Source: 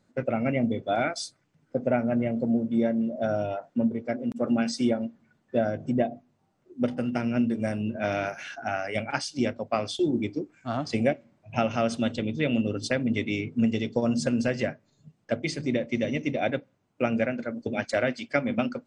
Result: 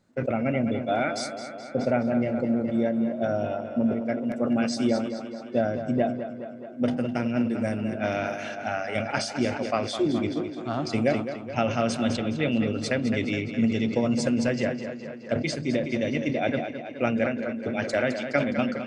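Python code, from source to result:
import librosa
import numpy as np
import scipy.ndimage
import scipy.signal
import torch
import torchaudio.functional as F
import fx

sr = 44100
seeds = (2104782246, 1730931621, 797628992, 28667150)

y = fx.echo_tape(x, sr, ms=210, feedback_pct=73, wet_db=-8.5, lp_hz=5800.0, drive_db=13.0, wow_cents=26)
y = fx.sustainer(y, sr, db_per_s=78.0)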